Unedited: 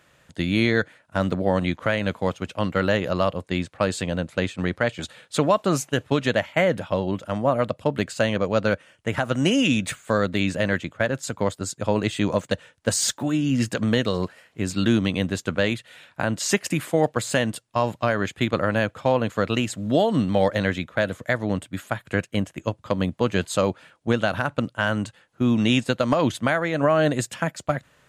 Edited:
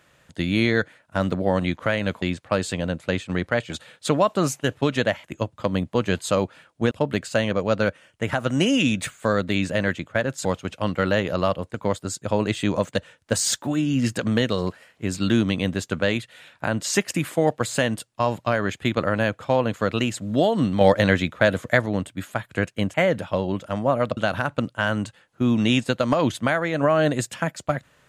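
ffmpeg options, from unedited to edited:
-filter_complex "[0:a]asplit=10[a][b][c][d][e][f][g][h][i][j];[a]atrim=end=2.222[k];[b]atrim=start=3.508:end=6.532[l];[c]atrim=start=22.498:end=24.172[m];[d]atrim=start=7.758:end=11.302[n];[e]atrim=start=2.218:end=3.512[o];[f]atrim=start=11.298:end=20.372[p];[g]atrim=start=20.368:end=21.422,asetpts=PTS-STARTPTS,volume=4.5dB[q];[h]atrim=start=21.418:end=22.502[r];[i]atrim=start=6.528:end=7.762[s];[j]atrim=start=24.168[t];[k][l]acrossfade=d=0.004:c1=hsin:c2=hsin[u];[u][m]acrossfade=d=0.004:c1=hsin:c2=hsin[v];[v][n]acrossfade=d=0.004:c1=hsin:c2=hsin[w];[w][o]acrossfade=d=0.004:c1=hsin:c2=hsin[x];[x][p]acrossfade=d=0.004:c1=hsin:c2=hsin[y];[y][q]acrossfade=d=0.004:c1=hsin:c2=hsin[z];[z][r]acrossfade=d=0.004:c1=hsin:c2=hsin[aa];[aa][s]acrossfade=d=0.004:c1=hsin:c2=hsin[ab];[ab][t]acrossfade=d=0.004:c1=hsin:c2=hsin"

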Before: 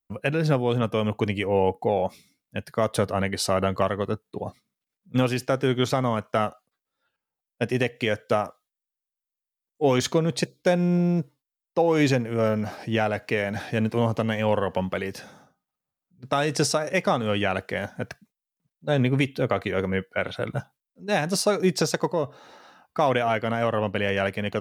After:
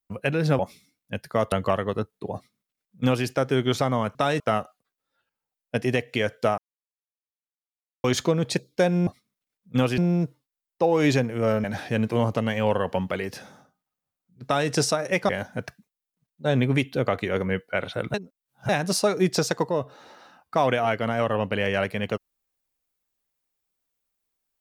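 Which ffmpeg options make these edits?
-filter_complex "[0:a]asplit=13[a][b][c][d][e][f][g][h][i][j][k][l][m];[a]atrim=end=0.592[n];[b]atrim=start=2.018:end=2.952[o];[c]atrim=start=3.638:end=6.272[p];[d]atrim=start=16.268:end=16.522[q];[e]atrim=start=6.268:end=8.45,asetpts=PTS-STARTPTS,afade=t=out:st=2.178:d=0.004:c=hsin[r];[f]atrim=start=8.45:end=9.91,asetpts=PTS-STARTPTS,volume=0[s];[g]atrim=start=9.91:end=10.942,asetpts=PTS-STARTPTS,afade=t=in:d=0.004:c=hsin[t];[h]atrim=start=4.468:end=5.382[u];[i]atrim=start=10.938:end=12.602[v];[j]atrim=start=13.458:end=17.112[w];[k]atrim=start=17.718:end=20.572[x];[l]atrim=start=20.568:end=21.122,asetpts=PTS-STARTPTS,areverse[y];[m]atrim=start=21.118[z];[n][o]acrossfade=d=0.004:c1=hsin:c2=hsin[aa];[aa][p]acrossfade=d=0.004:c1=hsin:c2=hsin[ab];[ab][q]acrossfade=d=0.004:c1=hsin:c2=hsin[ac];[r][s][t]concat=n=3:v=0:a=1[ad];[ac][ad]acrossfade=d=0.004:c1=hsin:c2=hsin[ae];[ae][u]acrossfade=d=0.004:c1=hsin:c2=hsin[af];[af][v]acrossfade=d=0.004:c1=hsin:c2=hsin[ag];[ag][w]acrossfade=d=0.004:c1=hsin:c2=hsin[ah];[ah][x]acrossfade=d=0.004:c1=hsin:c2=hsin[ai];[ai][y]acrossfade=d=0.004:c1=hsin:c2=hsin[aj];[aj][z]acrossfade=d=0.004:c1=hsin:c2=hsin"

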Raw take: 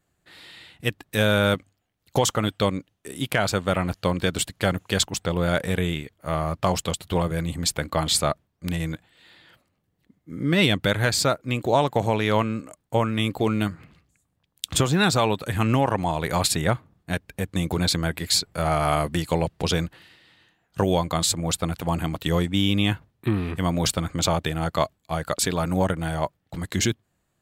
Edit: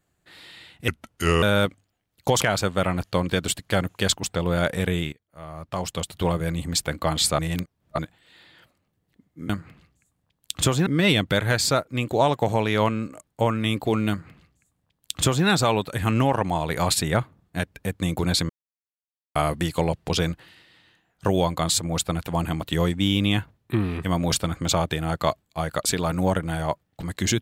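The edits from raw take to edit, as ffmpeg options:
-filter_complex "[0:a]asplit=11[a][b][c][d][e][f][g][h][i][j][k];[a]atrim=end=0.884[l];[b]atrim=start=0.88:end=1.31,asetpts=PTS-STARTPTS,asetrate=34839,aresample=44100[m];[c]atrim=start=1.306:end=2.302[n];[d]atrim=start=3.318:end=6.03,asetpts=PTS-STARTPTS,afade=t=out:st=2.708:d=0.004:c=hsin:silence=0.112202[o];[e]atrim=start=6.03:end=8.292,asetpts=PTS-STARTPTS,afade=t=in:d=1.01:c=qua:silence=0.112202[p];[f]atrim=start=8.288:end=8.892,asetpts=PTS-STARTPTS,areverse[q];[g]atrim=start=8.888:end=10.402[r];[h]atrim=start=13.628:end=15.002[s];[i]atrim=start=10.398:end=18.03,asetpts=PTS-STARTPTS,afade=t=out:st=7.628:d=0.004:c=hsin[t];[j]atrim=start=18.03:end=18.89,asetpts=PTS-STARTPTS,volume=0[u];[k]atrim=start=18.89,asetpts=PTS-STARTPTS,afade=t=in:d=0.004:c=hsin[v];[l][m]acrossfade=d=0.004:c1=hsin:c2=hsin[w];[w][n]acrossfade=d=0.004:c1=hsin:c2=hsin[x];[o][p]concat=n=2:v=0:a=1[y];[x][y]acrossfade=d=0.004:c1=hsin:c2=hsin[z];[z][q]acrossfade=d=0.004:c1=hsin:c2=hsin[aa];[aa][r]acrossfade=d=0.004:c1=hsin:c2=hsin[ab];[ab][s]acrossfade=d=0.004:c1=hsin:c2=hsin[ac];[t][u][v]concat=n=3:v=0:a=1[ad];[ac][ad]acrossfade=d=0.004:c1=hsin:c2=hsin"

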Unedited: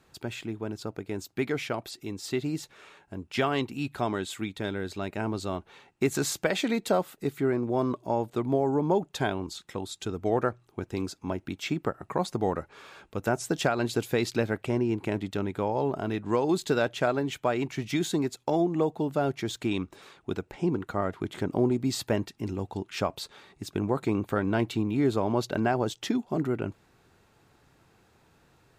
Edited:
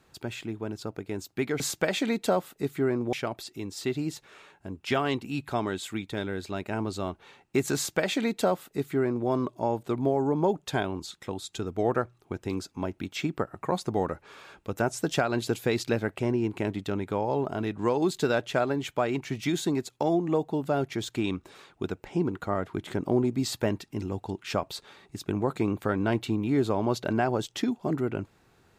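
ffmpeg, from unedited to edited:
-filter_complex "[0:a]asplit=3[a][b][c];[a]atrim=end=1.602[d];[b]atrim=start=6.218:end=7.752[e];[c]atrim=start=1.598[f];[d][e]acrossfade=d=0.004:c1=hsin:c2=hsin[g];[g][f]acrossfade=d=0.004:c1=hsin:c2=hsin"

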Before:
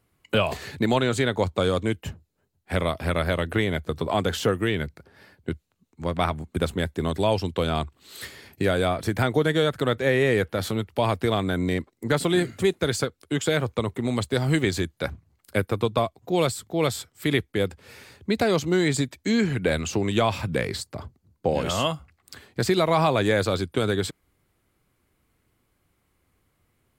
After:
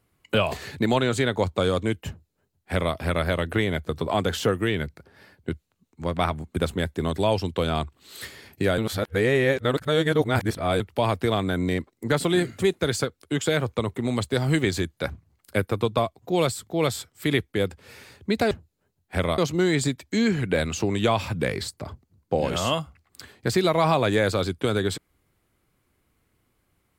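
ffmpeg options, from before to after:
-filter_complex "[0:a]asplit=5[a][b][c][d][e];[a]atrim=end=8.782[f];[b]atrim=start=8.778:end=10.802,asetpts=PTS-STARTPTS,areverse[g];[c]atrim=start=10.798:end=18.512[h];[d]atrim=start=2.078:end=2.952[i];[e]atrim=start=18.508[j];[f][g]acrossfade=d=0.004:c1=hsin:c2=hsin[k];[k][h]acrossfade=d=0.004:c1=hsin:c2=hsin[l];[l][i]acrossfade=d=0.004:c1=hsin:c2=hsin[m];[m][j]acrossfade=d=0.004:c1=hsin:c2=hsin"

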